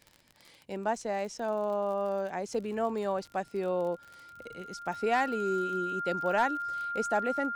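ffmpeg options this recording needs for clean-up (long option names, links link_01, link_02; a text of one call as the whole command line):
ffmpeg -i in.wav -af "adeclick=threshold=4,bandreject=frequency=1400:width=30" out.wav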